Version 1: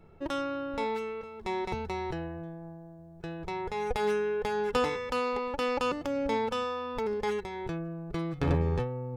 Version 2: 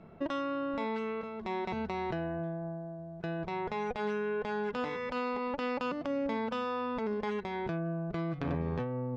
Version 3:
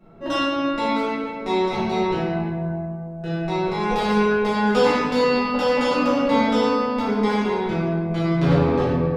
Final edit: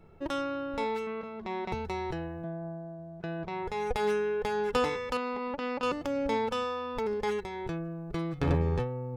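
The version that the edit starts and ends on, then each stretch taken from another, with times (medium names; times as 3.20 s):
1
1.07–1.72 s: from 2
2.44–3.63 s: from 2
5.17–5.83 s: from 2
not used: 3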